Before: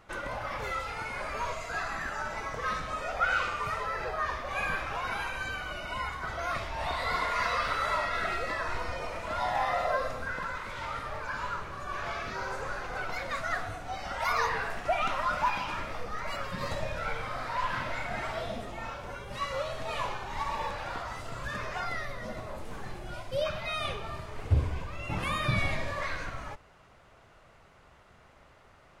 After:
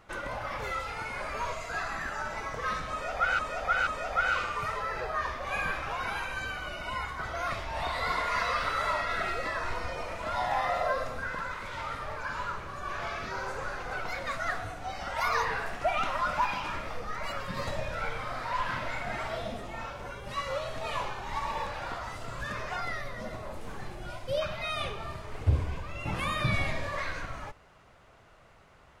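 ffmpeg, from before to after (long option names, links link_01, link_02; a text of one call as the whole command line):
ffmpeg -i in.wav -filter_complex "[0:a]asplit=3[link_01][link_02][link_03];[link_01]atrim=end=3.392[link_04];[link_02]atrim=start=2.908:end=3.392[link_05];[link_03]atrim=start=2.908[link_06];[link_04][link_05]acrossfade=duration=0.004:curve1=hsin:curve2=hsin[link_07];[link_07][link_06]acrossfade=duration=0.004:curve1=hsin:curve2=hsin" out.wav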